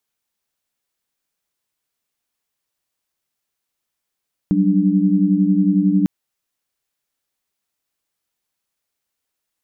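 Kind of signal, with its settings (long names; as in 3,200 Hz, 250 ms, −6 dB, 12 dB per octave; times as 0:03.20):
held notes F#3/G3/D4 sine, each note −17 dBFS 1.55 s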